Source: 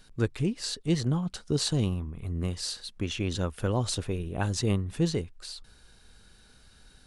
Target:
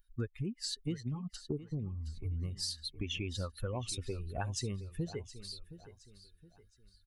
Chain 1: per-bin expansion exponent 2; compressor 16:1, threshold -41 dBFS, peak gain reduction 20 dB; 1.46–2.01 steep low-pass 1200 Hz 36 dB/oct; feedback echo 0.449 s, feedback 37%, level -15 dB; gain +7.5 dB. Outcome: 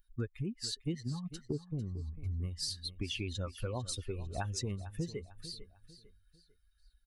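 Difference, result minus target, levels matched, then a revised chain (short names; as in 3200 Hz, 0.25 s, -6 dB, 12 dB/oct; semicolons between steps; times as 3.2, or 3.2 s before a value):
echo 0.269 s early
per-bin expansion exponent 2; compressor 16:1, threshold -41 dBFS, peak gain reduction 20 dB; 1.46–2.01 steep low-pass 1200 Hz 36 dB/oct; feedback echo 0.718 s, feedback 37%, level -15 dB; gain +7.5 dB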